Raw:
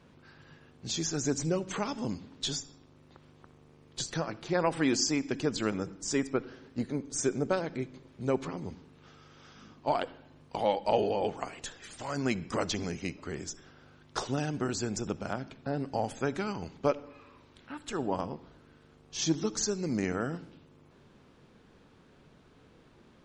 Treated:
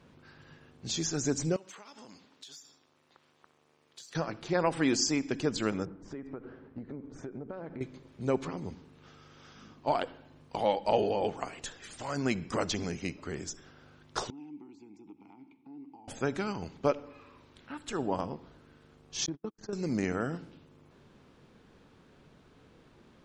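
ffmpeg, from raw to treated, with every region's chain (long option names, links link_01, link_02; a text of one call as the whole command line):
ffmpeg -i in.wav -filter_complex "[0:a]asettb=1/sr,asplit=3[link_01][link_02][link_03];[link_01]atrim=end=1.564[link_04];[link_02]atrim=start=1.56:end=4.15,asetpts=PTS-STARTPTS,afade=type=in:duration=0.004:curve=qsin,afade=type=out:start_time=2.586:duration=0.004:curve=qsin,aeval=exprs='if(lt(val(0),0),0.708*val(0),val(0))':channel_layout=same,highpass=frequency=1000:poles=1,acompressor=threshold=-45dB:ratio=16:attack=3.2:release=140:knee=1:detection=peak[link_05];[link_03]atrim=start=4.146[link_06];[link_04][link_05]acrossfade=duration=0.004:curve1=hsin:curve2=qsin[link_07];[link_07][link_06]acrossfade=duration=0.004:curve1=qsin:curve2=hsin,asettb=1/sr,asplit=3[link_08][link_09][link_10];[link_08]atrim=end=5.854[link_11];[link_09]atrim=start=5.85:end=7.81,asetpts=PTS-STARTPTS,afade=type=in:duration=0.004:curve=qsin,afade=type=out:start_time=1.956:duration=0.004:curve=qsin,lowpass=1500,acompressor=threshold=-36dB:ratio=16:attack=3.2:release=140:knee=1:detection=peak[link_12];[link_10]atrim=start=7.806[link_13];[link_11][link_12]acrossfade=duration=0.004:curve1=hsin:curve2=qsin[link_14];[link_14][link_13]acrossfade=duration=0.004:curve1=qsin:curve2=hsin,asettb=1/sr,asplit=3[link_15][link_16][link_17];[link_15]atrim=end=14.304[link_18];[link_16]atrim=start=14.3:end=16.08,asetpts=PTS-STARTPTS,afade=type=in:duration=0.004:curve=qsin,afade=type=out:start_time=1.776:duration=0.004:curve=qsin,acompressor=threshold=-36dB:ratio=4:attack=3.2:release=140:knee=1:detection=peak,asplit=3[link_19][link_20][link_21];[link_19]bandpass=frequency=300:width_type=q:width=8,volume=0dB[link_22];[link_20]bandpass=frequency=870:width_type=q:width=8,volume=-6dB[link_23];[link_21]bandpass=frequency=2240:width_type=q:width=8,volume=-9dB[link_24];[link_22][link_23][link_24]amix=inputs=3:normalize=0[link_25];[link_17]atrim=start=16.076[link_26];[link_18][link_25]acrossfade=duration=0.004:curve1=hsin:curve2=qsin[link_27];[link_27][link_26]acrossfade=duration=0.004:curve1=qsin:curve2=hsin,asettb=1/sr,asplit=3[link_28][link_29][link_30];[link_28]atrim=end=19.264[link_31];[link_29]atrim=start=19.26:end=19.73,asetpts=PTS-STARTPTS,afade=type=in:duration=0.004:curve=qsin,afade=type=out:start_time=0.466:duration=0.004:curve=qsin,agate=range=-47dB:threshold=-31dB:ratio=16:release=100:detection=peak,lowpass=2000,acompressor=threshold=-32dB:ratio=6:attack=3.2:release=140:knee=1:detection=peak[link_32];[link_30]atrim=start=19.726[link_33];[link_31][link_32]acrossfade=duration=0.004:curve1=hsin:curve2=qsin[link_34];[link_34][link_33]acrossfade=duration=0.004:curve1=qsin:curve2=hsin" out.wav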